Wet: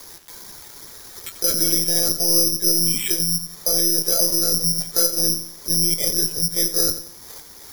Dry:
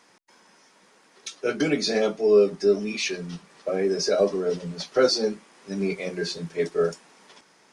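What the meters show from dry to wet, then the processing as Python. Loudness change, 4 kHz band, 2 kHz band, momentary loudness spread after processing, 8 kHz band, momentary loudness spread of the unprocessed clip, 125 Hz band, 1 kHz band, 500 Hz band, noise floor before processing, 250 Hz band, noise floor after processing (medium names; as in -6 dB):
+7.5 dB, +9.5 dB, -5.5 dB, 12 LU, +19.0 dB, 15 LU, +4.5 dB, -4.5 dB, -9.0 dB, -59 dBFS, -1.0 dB, -42 dBFS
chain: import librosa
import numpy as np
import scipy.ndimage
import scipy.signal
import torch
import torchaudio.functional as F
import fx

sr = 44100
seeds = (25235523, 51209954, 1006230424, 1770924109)

p1 = scipy.signal.sosfilt(scipy.signal.butter(12, 2400.0, 'lowpass', fs=sr, output='sos'), x)
p2 = fx.low_shelf(p1, sr, hz=210.0, db=8.5)
p3 = fx.over_compress(p2, sr, threshold_db=-26.0, ratio=-1.0)
p4 = p2 + F.gain(torch.from_numpy(p3), 1.0).numpy()
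p5 = fx.lpc_monotone(p4, sr, seeds[0], pitch_hz=170.0, order=16)
p6 = p5 + fx.echo_feedback(p5, sr, ms=89, feedback_pct=37, wet_db=-13, dry=0)
p7 = (np.kron(p6[::8], np.eye(8)[0]) * 8)[:len(p6)]
p8 = fx.dmg_crackle(p7, sr, seeds[1], per_s=310.0, level_db=-36.0)
p9 = fx.band_squash(p8, sr, depth_pct=40)
y = F.gain(torch.from_numpy(p9), -11.0).numpy()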